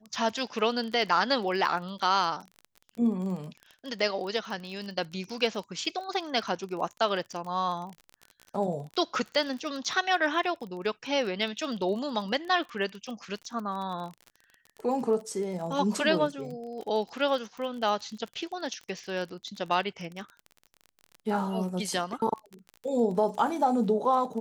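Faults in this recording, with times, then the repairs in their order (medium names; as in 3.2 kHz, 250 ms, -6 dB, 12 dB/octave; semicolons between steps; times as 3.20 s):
crackle 28 per s -35 dBFS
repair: de-click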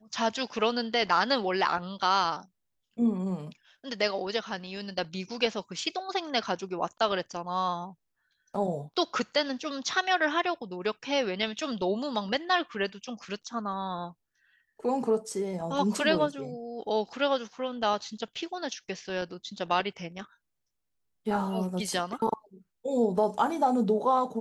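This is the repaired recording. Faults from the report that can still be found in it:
nothing left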